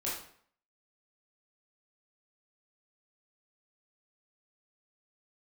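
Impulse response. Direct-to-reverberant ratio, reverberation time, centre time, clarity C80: -7.5 dB, 0.60 s, 49 ms, 7.5 dB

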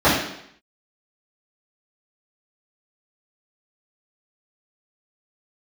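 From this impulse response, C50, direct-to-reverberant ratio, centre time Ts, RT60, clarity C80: 2.0 dB, -12.5 dB, 50 ms, 0.70 s, 5.5 dB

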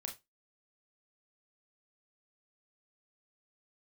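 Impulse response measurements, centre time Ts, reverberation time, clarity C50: 16 ms, 0.20 s, 12.0 dB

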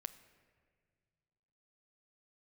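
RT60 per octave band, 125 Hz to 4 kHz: 2.8 s, 2.4 s, 2.1 s, 1.7 s, 1.8 s, 1.2 s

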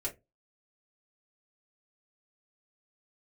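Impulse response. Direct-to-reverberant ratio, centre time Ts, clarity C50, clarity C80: -4.0 dB, 15 ms, 15.5 dB, 25.5 dB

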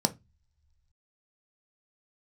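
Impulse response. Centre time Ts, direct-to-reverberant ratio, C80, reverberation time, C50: 4 ms, 6.5 dB, 29.0 dB, no single decay rate, 20.0 dB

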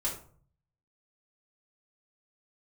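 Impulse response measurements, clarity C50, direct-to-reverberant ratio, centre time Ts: 7.0 dB, -5.5 dB, 25 ms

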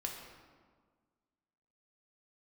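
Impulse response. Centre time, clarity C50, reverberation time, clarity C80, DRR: 54 ms, 3.5 dB, 1.6 s, 5.5 dB, 0.0 dB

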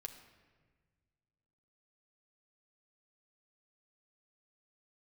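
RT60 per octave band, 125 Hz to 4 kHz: 2.5 s, 2.3 s, 1.7 s, 1.4 s, 1.4 s, 1.0 s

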